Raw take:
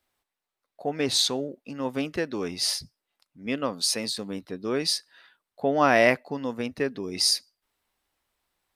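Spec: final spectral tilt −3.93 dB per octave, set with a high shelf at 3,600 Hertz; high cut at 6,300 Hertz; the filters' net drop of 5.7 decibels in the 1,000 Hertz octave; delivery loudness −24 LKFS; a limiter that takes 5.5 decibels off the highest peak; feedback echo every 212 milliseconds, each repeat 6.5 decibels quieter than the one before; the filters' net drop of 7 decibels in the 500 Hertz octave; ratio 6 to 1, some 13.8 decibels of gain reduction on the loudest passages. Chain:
low-pass filter 6,300 Hz
parametric band 500 Hz −7.5 dB
parametric band 1,000 Hz −4.5 dB
high-shelf EQ 3,600 Hz −4.5 dB
downward compressor 6 to 1, threshold −34 dBFS
brickwall limiter −28 dBFS
repeating echo 212 ms, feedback 47%, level −6.5 dB
level +15 dB

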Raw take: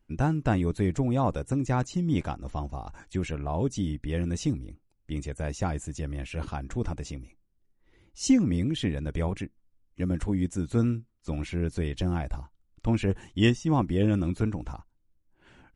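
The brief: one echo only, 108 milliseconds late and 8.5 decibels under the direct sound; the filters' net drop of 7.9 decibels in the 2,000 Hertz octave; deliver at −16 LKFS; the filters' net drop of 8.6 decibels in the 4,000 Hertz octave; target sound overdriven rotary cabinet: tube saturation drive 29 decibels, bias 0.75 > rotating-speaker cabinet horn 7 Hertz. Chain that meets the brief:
parametric band 2,000 Hz −8 dB
parametric band 4,000 Hz −9 dB
single-tap delay 108 ms −8.5 dB
tube saturation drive 29 dB, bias 0.75
rotating-speaker cabinet horn 7 Hz
level +21.5 dB

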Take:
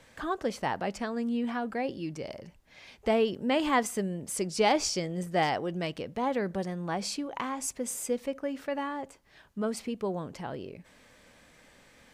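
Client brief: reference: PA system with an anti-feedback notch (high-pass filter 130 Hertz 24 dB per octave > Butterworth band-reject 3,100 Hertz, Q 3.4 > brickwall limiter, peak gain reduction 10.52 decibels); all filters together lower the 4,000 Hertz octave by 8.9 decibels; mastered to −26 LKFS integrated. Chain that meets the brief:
high-pass filter 130 Hz 24 dB per octave
Butterworth band-reject 3,100 Hz, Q 3.4
parametric band 4,000 Hz −8 dB
level +8.5 dB
brickwall limiter −15 dBFS

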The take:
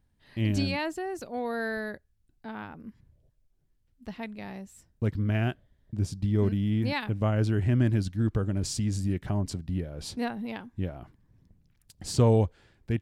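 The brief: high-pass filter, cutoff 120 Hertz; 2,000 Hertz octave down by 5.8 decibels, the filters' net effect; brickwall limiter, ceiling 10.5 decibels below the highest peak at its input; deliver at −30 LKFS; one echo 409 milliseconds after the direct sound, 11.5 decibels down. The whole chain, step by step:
high-pass filter 120 Hz
parametric band 2,000 Hz −7.5 dB
brickwall limiter −21.5 dBFS
single-tap delay 409 ms −11.5 dB
level +3.5 dB

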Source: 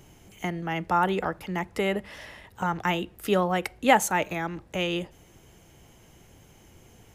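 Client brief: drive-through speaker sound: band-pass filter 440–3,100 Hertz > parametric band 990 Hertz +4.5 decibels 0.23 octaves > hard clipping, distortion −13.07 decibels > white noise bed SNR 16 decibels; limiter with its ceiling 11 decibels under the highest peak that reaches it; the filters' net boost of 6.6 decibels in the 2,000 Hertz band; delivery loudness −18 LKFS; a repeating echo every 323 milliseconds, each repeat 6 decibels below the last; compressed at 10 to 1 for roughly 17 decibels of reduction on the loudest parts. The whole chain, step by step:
parametric band 2,000 Hz +8.5 dB
downward compressor 10 to 1, threshold −28 dBFS
brickwall limiter −25 dBFS
band-pass filter 440–3,100 Hz
parametric band 990 Hz +4.5 dB 0.23 octaves
repeating echo 323 ms, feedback 50%, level −6 dB
hard clipping −32 dBFS
white noise bed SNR 16 dB
level +20 dB

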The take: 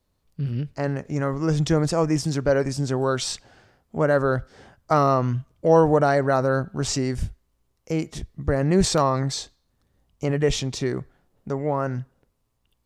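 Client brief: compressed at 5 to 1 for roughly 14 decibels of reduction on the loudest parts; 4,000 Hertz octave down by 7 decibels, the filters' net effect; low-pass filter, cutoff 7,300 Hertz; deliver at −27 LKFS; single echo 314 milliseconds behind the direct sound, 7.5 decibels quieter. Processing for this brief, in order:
low-pass filter 7,300 Hz
parametric band 4,000 Hz −8.5 dB
downward compressor 5 to 1, threshold −29 dBFS
single-tap delay 314 ms −7.5 dB
level +6.5 dB

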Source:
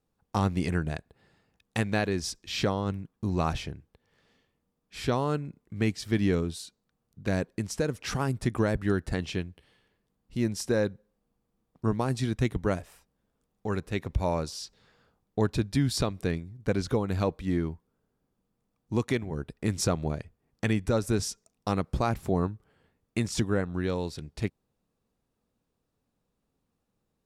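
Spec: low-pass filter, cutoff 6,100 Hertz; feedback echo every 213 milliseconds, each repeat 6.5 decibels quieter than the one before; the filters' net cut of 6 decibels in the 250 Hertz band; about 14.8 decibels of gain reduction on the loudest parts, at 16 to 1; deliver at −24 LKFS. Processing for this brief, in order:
low-pass filter 6,100 Hz
parametric band 250 Hz −8.5 dB
downward compressor 16 to 1, threshold −36 dBFS
repeating echo 213 ms, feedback 47%, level −6.5 dB
level +18 dB

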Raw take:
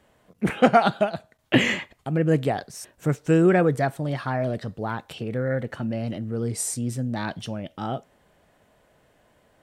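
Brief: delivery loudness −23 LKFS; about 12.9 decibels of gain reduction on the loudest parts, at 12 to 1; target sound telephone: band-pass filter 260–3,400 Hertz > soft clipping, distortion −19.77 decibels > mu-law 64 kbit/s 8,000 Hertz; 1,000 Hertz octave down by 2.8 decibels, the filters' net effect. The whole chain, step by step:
parametric band 1,000 Hz −4.5 dB
downward compressor 12 to 1, threshold −26 dBFS
band-pass filter 260–3,400 Hz
soft clipping −22.5 dBFS
level +13.5 dB
mu-law 64 kbit/s 8,000 Hz

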